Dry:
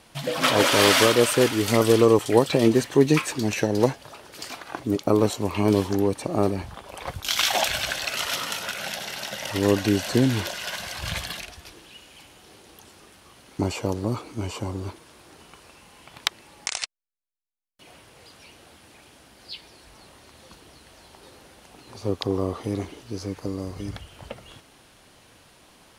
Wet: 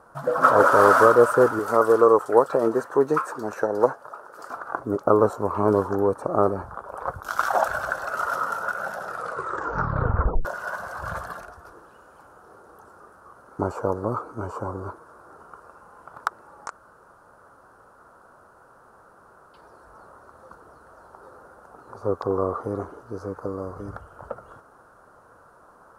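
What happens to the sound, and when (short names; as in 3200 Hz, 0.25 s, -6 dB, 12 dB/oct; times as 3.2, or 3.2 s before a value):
1.59–4.5 HPF 400 Hz 6 dB/oct
8.97 tape stop 1.48 s
16.71–19.54 room tone
whole clip: EQ curve 300 Hz 0 dB, 480 Hz +9 dB, 780 Hz +7 dB, 1400 Hz +15 dB, 2100 Hz -16 dB, 3200 Hz -21 dB, 5200 Hz -13 dB, 9200 Hz -8 dB; gain -4 dB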